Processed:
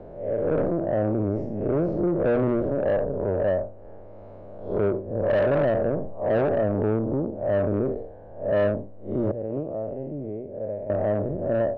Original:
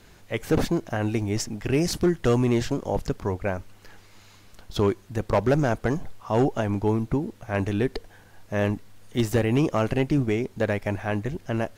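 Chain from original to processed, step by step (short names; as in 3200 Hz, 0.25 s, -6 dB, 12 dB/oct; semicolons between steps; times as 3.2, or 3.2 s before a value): time blur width 0.154 s; 9.31–10.9 gate -20 dBFS, range -16 dB; synth low-pass 590 Hz, resonance Q 6.5; notches 60/120 Hz; soft clip -18.5 dBFS, distortion -12 dB; three-band squash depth 40%; gain +1.5 dB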